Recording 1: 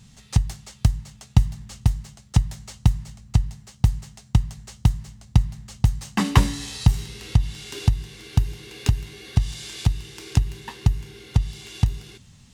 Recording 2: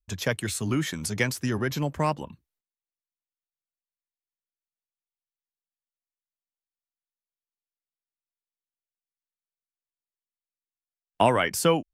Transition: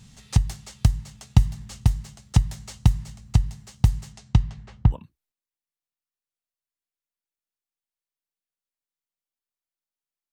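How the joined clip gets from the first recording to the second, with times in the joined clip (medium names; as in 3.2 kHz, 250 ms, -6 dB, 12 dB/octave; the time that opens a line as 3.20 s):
recording 1
4.12–4.96 s: low-pass 9.1 kHz -> 1.2 kHz
4.93 s: go over to recording 2 from 2.22 s, crossfade 0.06 s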